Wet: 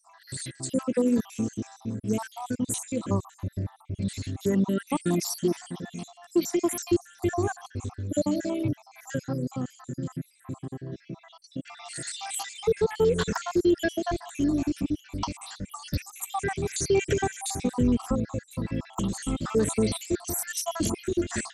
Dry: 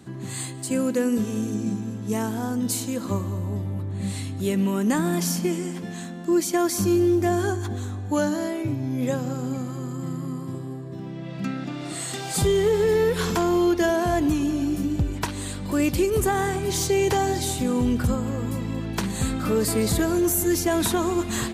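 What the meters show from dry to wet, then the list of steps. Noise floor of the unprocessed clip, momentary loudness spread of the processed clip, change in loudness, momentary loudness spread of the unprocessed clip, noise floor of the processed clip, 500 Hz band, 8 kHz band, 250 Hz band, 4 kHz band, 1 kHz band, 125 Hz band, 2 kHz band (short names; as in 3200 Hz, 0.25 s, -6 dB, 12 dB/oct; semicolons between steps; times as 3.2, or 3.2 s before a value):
-34 dBFS, 13 LU, -4.5 dB, 11 LU, -58 dBFS, -4.5 dB, -4.0 dB, -4.0 dB, -5.0 dB, -6.0 dB, -5.0 dB, -5.0 dB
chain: random spectral dropouts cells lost 64%; SBC 64 kbps 32000 Hz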